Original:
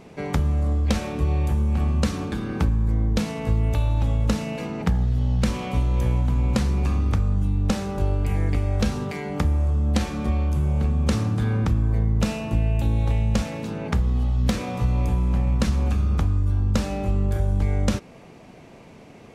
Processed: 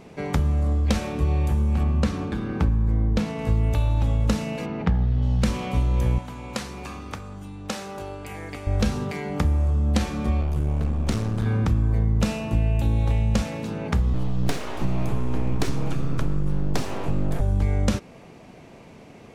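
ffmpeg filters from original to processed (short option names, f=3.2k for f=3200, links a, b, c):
-filter_complex "[0:a]asettb=1/sr,asplit=3[a][b][c];[a]atrim=end=1.834[d];[b]atrim=start=1.83:end=3.39,asetpts=PTS-STARTPTS,afade=t=in:d=0.004:c=qsin,afade=t=out:st=1.556:d=0.004:c=qsin,highshelf=f=4.6k:g=-9.5[e];[c]atrim=start=3.386[f];[d][e]acrossfade=d=0.004:c1=hsin:c2=qsin[g];[g][f]acrossfade=d=0.004:c1=qsin:c2=hsin,asplit=3[h][i][j];[h]afade=t=out:st=4.65:d=0.02[k];[i]lowpass=3.5k,afade=t=in:st=4.65:d=0.02,afade=t=out:st=5.21:d=0.02[l];[j]afade=t=in:st=5.21:d=0.02[m];[k][l][m]amix=inputs=3:normalize=0,asettb=1/sr,asplit=3[n][o][p];[n]atrim=end=6.184[q];[o]atrim=start=6.18:end=8.67,asetpts=PTS-STARTPTS,afade=t=in:d=0.004:c=qsin,afade=t=out:st=2.486:d=0.004:c=qsin,highpass=f=650:p=1[r];[p]atrim=start=8.666[s];[q][r]acrossfade=d=0.004:c1=hsin:c2=qsin[t];[t][s]acrossfade=d=0.004:c1=qsin:c2=hsin,asettb=1/sr,asplit=3[u][v][w];[u]atrim=end=10.414[x];[v]atrim=start=10.41:end=11.46,asetpts=PTS-STARTPTS,afade=t=in:d=0.004:c=qsin,afade=t=out:st=1.046:d=0.004:c=qsin,aeval=exprs='clip(val(0),-1,0.0376)':c=same[y];[w]atrim=start=11.456[z];[x][y]acrossfade=d=0.004:c1=hsin:c2=qsin[aa];[aa][z]acrossfade=d=0.004:c1=qsin:c2=hsin,asettb=1/sr,asplit=3[ab][ac][ad];[ab]atrim=end=14.134[ae];[ac]atrim=start=14.13:end=17.41,asetpts=PTS-STARTPTS,afade=t=in:d=0.004:c=qsin,afade=t=out:st=3.276:d=0.004:c=qsin,aeval=exprs='abs(val(0))':c=same[af];[ad]atrim=start=17.406[ag];[ae][af]acrossfade=d=0.004:c1=hsin:c2=qsin[ah];[ah][ag]acrossfade=d=0.004:c1=qsin:c2=hsin"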